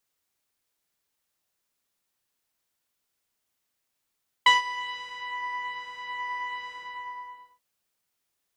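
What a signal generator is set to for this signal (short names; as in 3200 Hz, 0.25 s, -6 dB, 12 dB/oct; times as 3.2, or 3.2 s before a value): synth patch with pulse-width modulation B5, interval 0 st, detune 16 cents, sub -28.5 dB, noise -15 dB, filter lowpass, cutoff 1000 Hz, Q 1.2, filter envelope 2 oct, filter decay 0.90 s, filter sustain 50%, attack 5 ms, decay 0.15 s, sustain -18.5 dB, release 0.88 s, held 2.27 s, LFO 1.2 Hz, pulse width 17%, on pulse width 11%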